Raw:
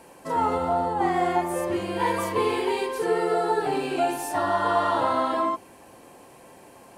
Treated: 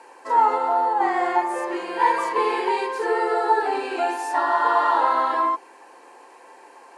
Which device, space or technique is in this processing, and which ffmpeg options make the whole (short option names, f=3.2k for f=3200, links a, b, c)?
phone speaker on a table: -af "highpass=f=360:w=0.5412,highpass=f=360:w=1.3066,equalizer=f=620:t=q:w=4:g=-7,equalizer=f=910:t=q:w=4:g=7,equalizer=f=1.7k:t=q:w=4:g=5,equalizer=f=3.3k:t=q:w=4:g=-5,equalizer=f=5.9k:t=q:w=4:g=-3,equalizer=f=8.3k:t=q:w=4:g=-5,lowpass=f=8.8k:w=0.5412,lowpass=f=8.8k:w=1.3066,volume=2dB"